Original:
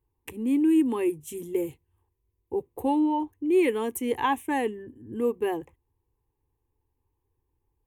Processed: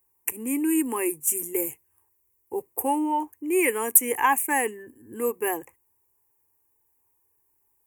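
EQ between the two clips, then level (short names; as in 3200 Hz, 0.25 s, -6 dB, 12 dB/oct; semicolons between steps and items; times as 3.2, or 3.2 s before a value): Butterworth band-stop 3900 Hz, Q 1; tilt +4.5 dB/oct; notch 6400 Hz, Q 24; +4.5 dB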